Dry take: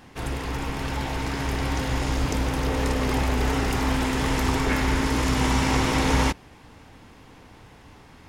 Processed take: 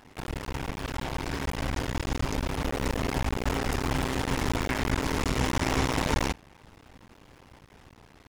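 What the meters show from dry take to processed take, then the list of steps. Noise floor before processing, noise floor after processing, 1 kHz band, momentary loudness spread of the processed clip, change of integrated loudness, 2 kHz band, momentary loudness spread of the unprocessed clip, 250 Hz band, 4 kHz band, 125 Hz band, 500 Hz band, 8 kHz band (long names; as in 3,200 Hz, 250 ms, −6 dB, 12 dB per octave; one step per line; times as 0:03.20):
−50 dBFS, −55 dBFS, −5.0 dB, 8 LU, −5.0 dB, −4.5 dB, 8 LU, −5.5 dB, −4.5 dB, −5.0 dB, −4.0 dB, −4.5 dB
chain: sub-harmonics by changed cycles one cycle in 2, muted
level −2 dB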